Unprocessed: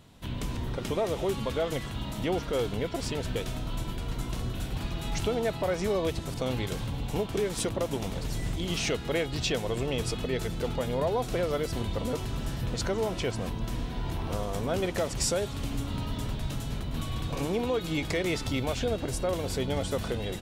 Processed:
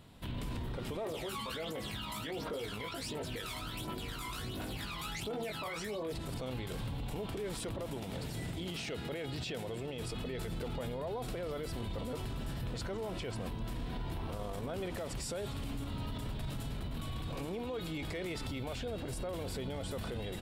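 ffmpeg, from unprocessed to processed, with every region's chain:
-filter_complex "[0:a]asettb=1/sr,asplit=3[s0][s1][s2];[s0]atrim=end=1.054[s3];[s1]atrim=start=1.05:end=6.14,asetpts=PTS-STARTPTS,afade=t=in:d=0.004:c=qsin,afade=t=out:st=5.086:d=0.004:c=qsin,highpass=f=560:p=1,aphaser=in_gain=1:out_gain=1:delay=1:decay=0.72:speed=1.4:type=triangular,asplit=2[s4][s5];[s5]adelay=19,volume=0.596[s6];[s4][s6]amix=inputs=2:normalize=0,atrim=end_sample=224469[s7];[s2]atrim=start=6.136[s8];[s3][s7]acrossfade=d=0.004:c1=hsin:c2=qsin[s9];[s9][s8]acrossfade=d=0.004:c1=qsin:c2=hsin,asettb=1/sr,asplit=3[s10][s11][s12];[s10]atrim=end=7.984[s13];[s11]atrim=start=7.98:end=10.03,asetpts=PTS-STARTPTS,afade=t=in:d=0.004:c=qsin,afade=t=out:st=2.046:d=0.004:c=qsin,highpass=86,equalizer=f=1100:w=6.7:g=-5[s14];[s12]atrim=start=10.026[s15];[s13][s14]acrossfade=d=0.004:c1=hsin:c2=qsin[s16];[s16][s15]acrossfade=d=0.004:c1=qsin:c2=hsin,equalizer=f=6200:w=3.3:g=-7.5,alimiter=level_in=2:limit=0.0631:level=0:latency=1:release=31,volume=0.501,volume=0.841"

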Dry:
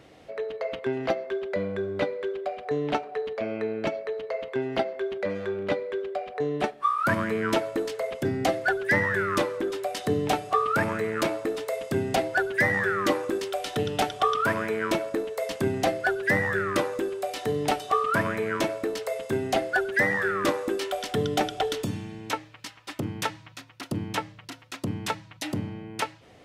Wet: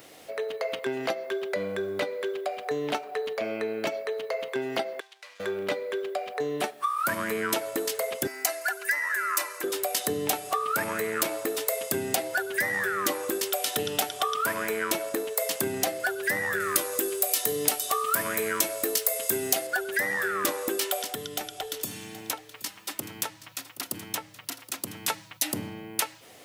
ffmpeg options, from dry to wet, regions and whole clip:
-filter_complex "[0:a]asettb=1/sr,asplit=3[s0][s1][s2];[s0]atrim=end=5.004[s3];[s1]atrim=start=5:end=5.4,asetpts=PTS-STARTPTS,afade=t=in:d=0.004:c=qsin,afade=t=out:st=0.396:d=0.004:c=qsin,aeval=exprs='if(lt(val(0),0),0.251*val(0),val(0))':c=same,highpass=640,lowpass=4900,aderivative[s4];[s2]atrim=start=5.396[s5];[s3][s4]acrossfade=d=0.004:c1=hsin:c2=qsin[s6];[s6][s5]acrossfade=d=0.004:c1=qsin:c2=hsin,asettb=1/sr,asplit=3[s7][s8][s9];[s7]atrim=end=8.274[s10];[s8]atrim=start=8.27:end=9.64,asetpts=PTS-STARTPTS,afade=t=in:d=0.004:c=qsin,afade=t=out:st=1.366:d=0.004:c=qsin,highpass=960,equalizer=f=3400:w=4.6:g=-11.5,aecho=1:1:3:0.64,atrim=end_sample=60417[s11];[s9]atrim=start=9.636[s12];[s10][s11]acrossfade=d=0.004:c1=hsin:c2=qsin[s13];[s13][s12]acrossfade=d=0.004:c1=qsin:c2=hsin,asettb=1/sr,asplit=3[s14][s15][s16];[s14]atrim=end=16.604[s17];[s15]atrim=start=16.6:end=19.67,asetpts=PTS-STARTPTS,afade=t=in:d=0.004:c=qsin,afade=t=out:st=3.066:d=0.004:c=qsin,highshelf=f=4600:g=9,bandreject=f=840:w=11,asplit=2[s18][s19];[s19]adelay=18,volume=0.224[s20];[s18][s20]amix=inputs=2:normalize=0,atrim=end_sample=135387[s21];[s16]atrim=start=19.666[s22];[s17][s21]acrossfade=d=0.004:c1=hsin:c2=qsin[s23];[s23][s22]acrossfade=d=0.004:c1=qsin:c2=hsin,asettb=1/sr,asplit=3[s24][s25][s26];[s24]atrim=end=21.024[s27];[s25]atrim=start=21.02:end=25.08,asetpts=PTS-STARTPTS,afade=t=in:d=0.004:c=qsin,afade=t=out:st=4.056:d=0.004:c=qsin,acrossover=split=100|1100[s28][s29][s30];[s28]acompressor=threshold=0.00447:ratio=4[s31];[s29]acompressor=threshold=0.0112:ratio=4[s32];[s30]acompressor=threshold=0.00794:ratio=4[s33];[s31][s32][s33]amix=inputs=3:normalize=0,aecho=1:1:774:0.15,atrim=end_sample=179046[s34];[s26]atrim=start=25.076[s35];[s27][s34]acrossfade=d=0.004:c1=hsin:c2=qsin[s36];[s36][s35]acrossfade=d=0.004:c1=qsin:c2=hsin,aemphasis=mode=production:type=bsi,acompressor=threshold=0.0398:ratio=4,highshelf=f=8600:g=6,volume=1.33"

